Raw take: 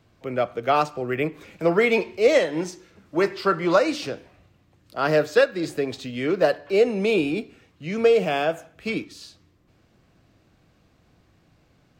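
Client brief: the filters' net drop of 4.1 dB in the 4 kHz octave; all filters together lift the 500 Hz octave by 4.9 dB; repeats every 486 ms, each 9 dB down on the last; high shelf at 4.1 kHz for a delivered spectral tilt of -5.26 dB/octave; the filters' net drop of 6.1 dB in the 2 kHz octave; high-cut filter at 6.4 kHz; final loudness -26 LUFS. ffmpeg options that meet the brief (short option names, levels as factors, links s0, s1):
-af "lowpass=6400,equalizer=f=500:t=o:g=6,equalizer=f=2000:t=o:g=-8,equalizer=f=4000:t=o:g=-4.5,highshelf=f=4100:g=4.5,aecho=1:1:486|972|1458|1944:0.355|0.124|0.0435|0.0152,volume=0.447"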